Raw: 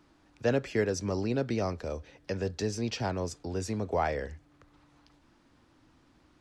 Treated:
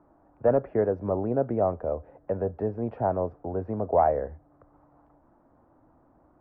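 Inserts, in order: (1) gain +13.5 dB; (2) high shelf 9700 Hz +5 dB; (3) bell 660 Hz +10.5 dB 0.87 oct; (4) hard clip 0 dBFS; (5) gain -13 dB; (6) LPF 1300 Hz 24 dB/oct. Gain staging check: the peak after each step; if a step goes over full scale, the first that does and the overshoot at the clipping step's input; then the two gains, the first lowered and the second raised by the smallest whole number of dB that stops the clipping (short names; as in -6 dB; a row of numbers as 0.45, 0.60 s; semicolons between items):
-1.5, -1.5, +4.5, 0.0, -13.0, -11.5 dBFS; step 3, 4.5 dB; step 1 +8.5 dB, step 5 -8 dB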